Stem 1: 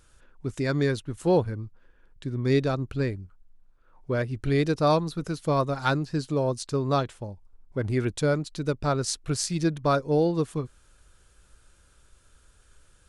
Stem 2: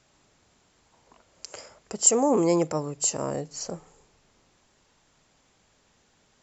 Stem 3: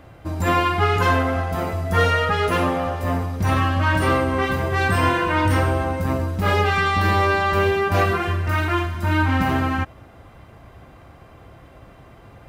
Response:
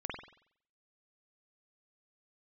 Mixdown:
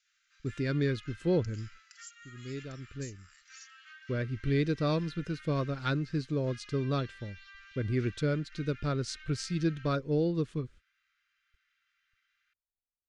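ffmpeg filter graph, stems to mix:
-filter_complex "[0:a]lowpass=4300,agate=range=0.00631:threshold=0.00501:ratio=16:detection=peak,volume=0.708[s0];[1:a]volume=0.376,asplit=2[s1][s2];[2:a]flanger=delay=22.5:depth=3.7:speed=0.22,adelay=50,volume=0.188[s3];[s2]apad=whole_len=576962[s4];[s0][s4]sidechaincompress=threshold=0.0141:ratio=8:attack=10:release=1240[s5];[s1][s3]amix=inputs=2:normalize=0,asuperpass=centerf=3100:order=20:qfactor=0.54,acompressor=threshold=0.00398:ratio=5,volume=1[s6];[s5][s6]amix=inputs=2:normalize=0,equalizer=f=830:t=o:w=0.96:g=-14.5"

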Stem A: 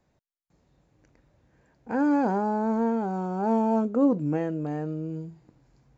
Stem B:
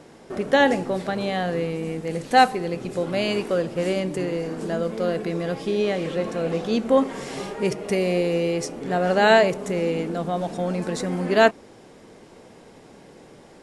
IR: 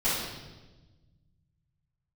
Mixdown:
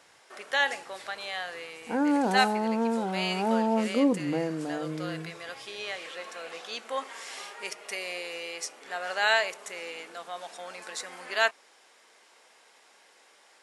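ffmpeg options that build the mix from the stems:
-filter_complex "[0:a]lowshelf=f=130:g=-6.5,volume=0.891[s0];[1:a]highpass=1200,volume=0.794[s1];[s0][s1]amix=inputs=2:normalize=0,highpass=57,bandreject=f=50:t=h:w=6,bandreject=f=100:t=h:w=6,bandreject=f=150:t=h:w=6"

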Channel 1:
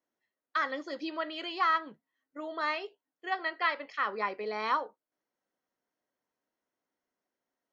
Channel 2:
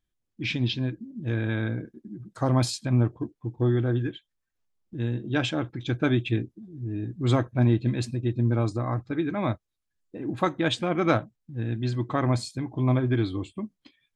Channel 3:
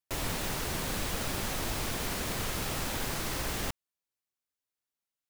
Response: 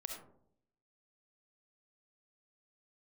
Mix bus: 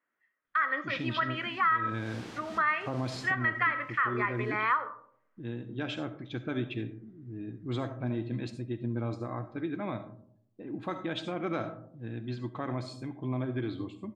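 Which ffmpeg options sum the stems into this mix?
-filter_complex "[0:a]firequalizer=gain_entry='entry(830,0);entry(1200,12);entry(1900,13);entry(4200,-11)':delay=0.05:min_phase=1,volume=0.668,asplit=3[s0][s1][s2];[s1]volume=0.422[s3];[1:a]adelay=450,volume=0.335,asplit=2[s4][s5];[s5]volume=0.631[s6];[2:a]adelay=850,volume=0.316,afade=t=in:st=1.62:d=0.5:silence=0.281838,afade=t=out:st=3.09:d=0.5:silence=0.316228[s7];[s2]apad=whole_len=270926[s8];[s7][s8]sidechaincompress=threshold=0.0141:ratio=8:attack=5.7:release=250[s9];[s4][s9]amix=inputs=2:normalize=0,highpass=120,lowpass=5000,alimiter=level_in=1.41:limit=0.0631:level=0:latency=1:release=77,volume=0.708,volume=1[s10];[3:a]atrim=start_sample=2205[s11];[s3][s6]amix=inputs=2:normalize=0[s12];[s12][s11]afir=irnorm=-1:irlink=0[s13];[s0][s10][s13]amix=inputs=3:normalize=0,alimiter=limit=0.126:level=0:latency=1:release=166"

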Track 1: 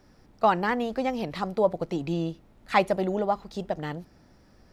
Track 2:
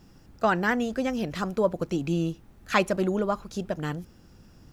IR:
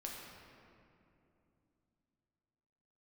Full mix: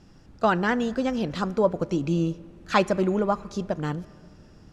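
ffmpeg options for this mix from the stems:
-filter_complex "[0:a]volume=0.355[s0];[1:a]volume=1,asplit=2[s1][s2];[s2]volume=0.178[s3];[2:a]atrim=start_sample=2205[s4];[s3][s4]afir=irnorm=-1:irlink=0[s5];[s0][s1][s5]amix=inputs=3:normalize=0,lowpass=7600"

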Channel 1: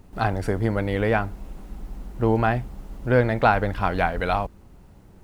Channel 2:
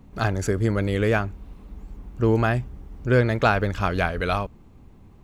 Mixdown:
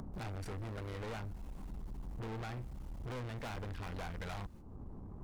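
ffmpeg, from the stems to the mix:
-filter_complex "[0:a]agate=range=0.126:threshold=0.00794:ratio=16:detection=peak,acrossover=split=370|3000[s0][s1][s2];[s1]acompressor=threshold=0.0501:ratio=2.5[s3];[s0][s3][s2]amix=inputs=3:normalize=0,volume=0.355,asplit=2[s4][s5];[1:a]lowpass=f=1200:w=0.5412,lowpass=f=1200:w=1.3066,aeval=exprs='0.0531*(abs(mod(val(0)/0.0531+3,4)-2)-1)':c=same,volume=0.794[s6];[s5]apad=whole_len=230715[s7];[s6][s7]sidechaincompress=threshold=0.0141:ratio=8:attack=16:release=794[s8];[s4][s8]amix=inputs=2:normalize=0,equalizer=f=5900:w=0.6:g=2.5,acompressor=mode=upward:threshold=0.0158:ratio=2.5,aeval=exprs='(tanh(100*val(0)+0.35)-tanh(0.35))/100':c=same"

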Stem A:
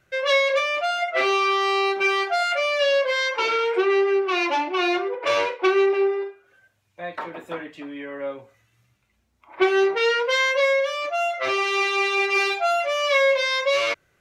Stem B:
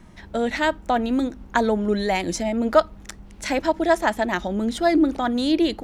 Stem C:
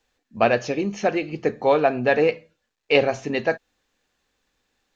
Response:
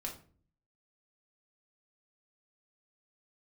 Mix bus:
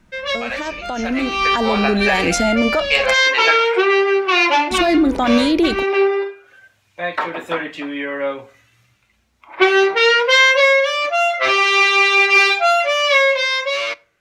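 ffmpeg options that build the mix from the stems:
-filter_complex "[0:a]equalizer=f=2900:w=0.35:g=6,volume=0.473,asplit=2[s0][s1];[s1]volume=0.188[s2];[1:a]dynaudnorm=f=260:g=3:m=3.76,volume=0.422,asplit=3[s3][s4][s5];[s3]atrim=end=3.14,asetpts=PTS-STARTPTS,afade=t=out:st=3.136:d=0.004:c=hsin[s6];[s4]atrim=start=3.14:end=4.71,asetpts=PTS-STARTPTS,volume=0[s7];[s5]atrim=start=4.71,asetpts=PTS-STARTPTS,afade=t=in:d=0.004:c=hsin[s8];[s6][s7][s8]concat=n=3:v=0:a=1,asplit=2[s9][s10];[2:a]highpass=1300,asoftclip=type=tanh:threshold=0.316,volume=0.75,asplit=2[s11][s12];[s12]volume=0.631[s13];[s10]apad=whole_len=626418[s14];[s0][s14]sidechaincompress=threshold=0.0251:ratio=8:attack=16:release=258[s15];[s9][s11]amix=inputs=2:normalize=0,alimiter=limit=0.112:level=0:latency=1:release=41,volume=1[s16];[3:a]atrim=start_sample=2205[s17];[s2][s13]amix=inputs=2:normalize=0[s18];[s18][s17]afir=irnorm=-1:irlink=0[s19];[s15][s16][s19]amix=inputs=3:normalize=0,dynaudnorm=f=240:g=11:m=4.47"

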